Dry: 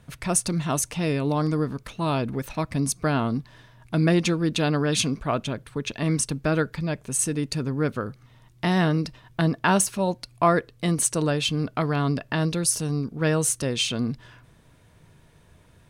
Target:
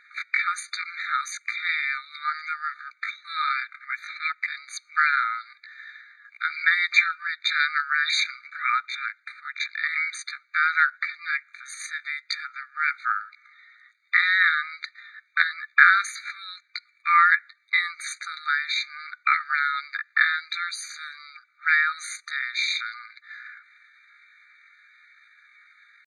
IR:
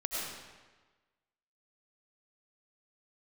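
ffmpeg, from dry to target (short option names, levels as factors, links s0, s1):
-af "lowpass=f=2700:t=q:w=10,atempo=0.61,afftfilt=real='re*eq(mod(floor(b*sr/1024/1200),2),1)':imag='im*eq(mod(floor(b*sr/1024/1200),2),1)':win_size=1024:overlap=0.75,volume=2.51"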